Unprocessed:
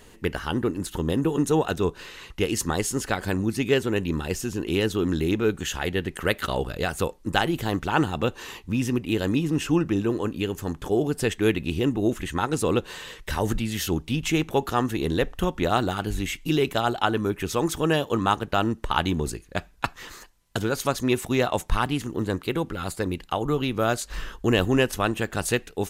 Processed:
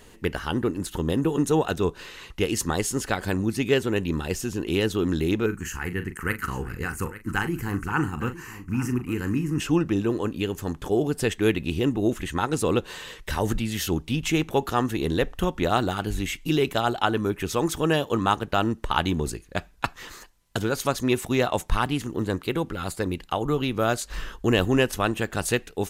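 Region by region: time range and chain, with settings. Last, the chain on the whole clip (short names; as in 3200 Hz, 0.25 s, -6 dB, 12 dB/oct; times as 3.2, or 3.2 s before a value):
5.46–9.6 fixed phaser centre 1500 Hz, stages 4 + doubler 40 ms -10 dB + echo 0.855 s -15 dB
whole clip: dry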